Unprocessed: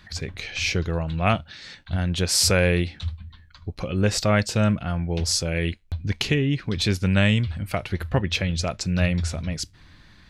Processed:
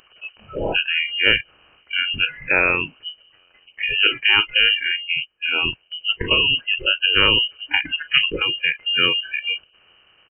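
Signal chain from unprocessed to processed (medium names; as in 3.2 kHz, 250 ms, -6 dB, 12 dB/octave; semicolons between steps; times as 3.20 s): spectral levelling over time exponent 0.4; 2.38–2.91 s: high-pass 370 Hz -> 140 Hz 12 dB/octave; spectral gate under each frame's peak -25 dB strong; delay 839 ms -15.5 dB; spectral noise reduction 30 dB; frequency inversion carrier 3 kHz; 4.96–5.53 s: upward expansion 2.5:1, over -34 dBFS; trim +1.5 dB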